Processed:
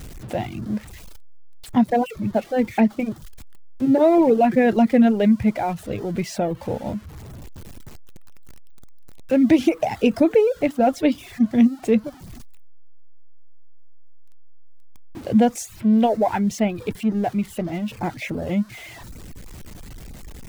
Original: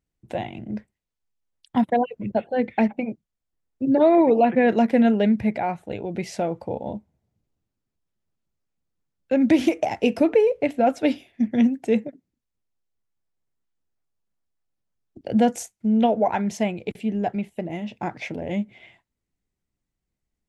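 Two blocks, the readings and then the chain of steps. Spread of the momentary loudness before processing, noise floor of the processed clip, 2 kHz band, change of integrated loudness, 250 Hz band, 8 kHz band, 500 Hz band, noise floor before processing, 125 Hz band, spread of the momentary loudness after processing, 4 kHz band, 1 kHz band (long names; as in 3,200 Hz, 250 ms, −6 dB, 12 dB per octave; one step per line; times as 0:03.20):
14 LU, −42 dBFS, +0.5 dB, +2.0 dB, +3.0 dB, can't be measured, +1.0 dB, −83 dBFS, +4.5 dB, 14 LU, +1.5 dB, +0.5 dB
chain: converter with a step at zero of −34.5 dBFS
reverb reduction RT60 0.58 s
low-shelf EQ 220 Hz +7 dB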